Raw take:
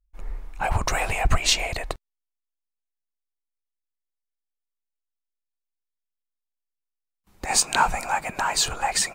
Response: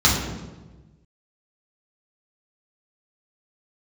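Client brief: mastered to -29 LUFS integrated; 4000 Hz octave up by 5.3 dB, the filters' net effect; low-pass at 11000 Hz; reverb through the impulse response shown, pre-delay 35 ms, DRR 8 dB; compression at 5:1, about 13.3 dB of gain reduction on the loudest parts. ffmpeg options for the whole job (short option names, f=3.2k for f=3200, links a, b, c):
-filter_complex "[0:a]lowpass=11k,equalizer=f=4k:t=o:g=6.5,acompressor=threshold=-28dB:ratio=5,asplit=2[a][b];[1:a]atrim=start_sample=2205,adelay=35[c];[b][c]afir=irnorm=-1:irlink=0,volume=-28dB[d];[a][d]amix=inputs=2:normalize=0,volume=1.5dB"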